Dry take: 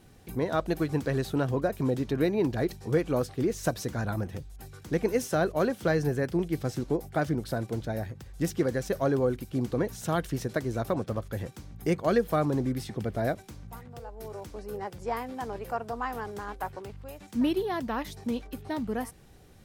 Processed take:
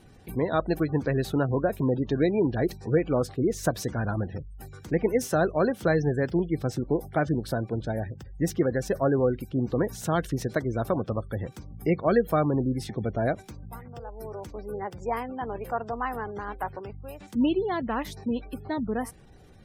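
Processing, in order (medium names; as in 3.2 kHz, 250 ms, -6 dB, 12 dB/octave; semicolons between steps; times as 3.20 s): spectral gate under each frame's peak -30 dB strong; trim +2.5 dB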